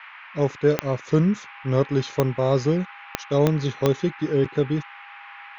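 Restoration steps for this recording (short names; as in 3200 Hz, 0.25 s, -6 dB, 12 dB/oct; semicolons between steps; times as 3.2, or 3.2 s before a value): de-click; notch 810 Hz, Q 30; noise print and reduce 25 dB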